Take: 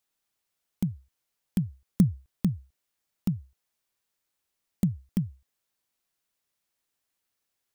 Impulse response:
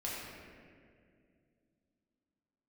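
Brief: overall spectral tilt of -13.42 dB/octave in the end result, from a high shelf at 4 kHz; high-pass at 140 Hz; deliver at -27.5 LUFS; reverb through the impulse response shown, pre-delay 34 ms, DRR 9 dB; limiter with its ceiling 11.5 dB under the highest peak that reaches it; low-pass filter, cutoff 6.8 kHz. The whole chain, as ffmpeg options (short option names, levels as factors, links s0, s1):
-filter_complex "[0:a]highpass=140,lowpass=6800,highshelf=f=4000:g=6,alimiter=limit=0.075:level=0:latency=1,asplit=2[s0][s1];[1:a]atrim=start_sample=2205,adelay=34[s2];[s1][s2]afir=irnorm=-1:irlink=0,volume=0.251[s3];[s0][s3]amix=inputs=2:normalize=0,volume=3.35"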